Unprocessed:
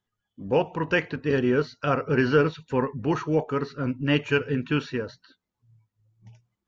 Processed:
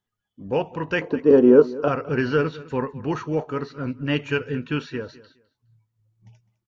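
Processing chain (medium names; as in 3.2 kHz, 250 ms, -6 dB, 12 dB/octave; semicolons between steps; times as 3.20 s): 1.01–1.88 s: graphic EQ 125/250/500/1000/2000/4000 Hz -7/+9/+11/+9/-10/-6 dB; on a send: feedback delay 207 ms, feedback 21%, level -19 dB; on the sum: trim -1 dB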